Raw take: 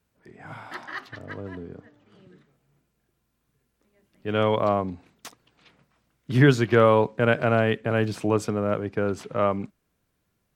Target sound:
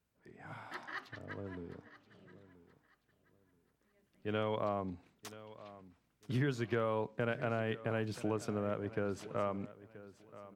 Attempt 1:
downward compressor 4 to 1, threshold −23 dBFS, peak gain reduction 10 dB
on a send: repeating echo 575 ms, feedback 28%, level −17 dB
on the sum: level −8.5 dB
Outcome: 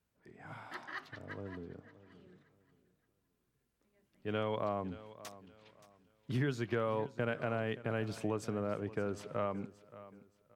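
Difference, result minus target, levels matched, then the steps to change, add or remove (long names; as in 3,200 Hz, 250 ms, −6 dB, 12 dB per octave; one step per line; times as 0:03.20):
echo 404 ms early
change: repeating echo 979 ms, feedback 28%, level −17 dB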